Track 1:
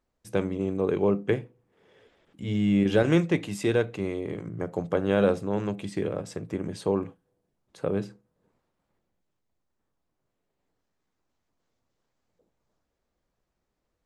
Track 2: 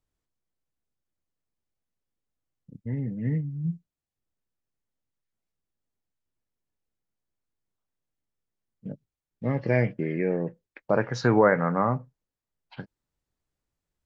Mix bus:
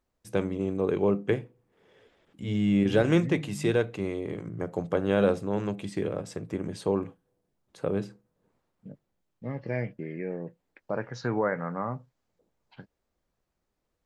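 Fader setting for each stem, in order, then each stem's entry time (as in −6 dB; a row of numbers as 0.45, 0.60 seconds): −1.0, −8.0 decibels; 0.00, 0.00 seconds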